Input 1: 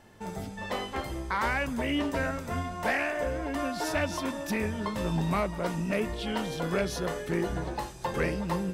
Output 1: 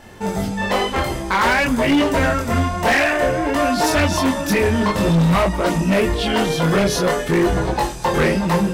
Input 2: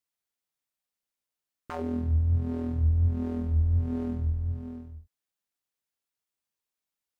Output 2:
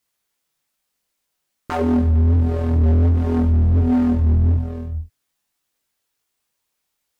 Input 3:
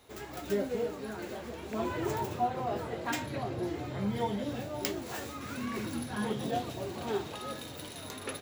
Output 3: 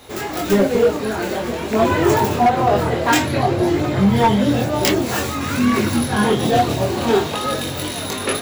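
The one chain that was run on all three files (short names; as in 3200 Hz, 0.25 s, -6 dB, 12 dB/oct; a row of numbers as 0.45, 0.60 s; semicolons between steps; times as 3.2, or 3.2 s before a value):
chorus voices 2, 0.52 Hz, delay 23 ms, depth 3.1 ms; hard clip -29.5 dBFS; match loudness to -18 LUFS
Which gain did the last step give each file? +17.5, +16.5, +21.0 dB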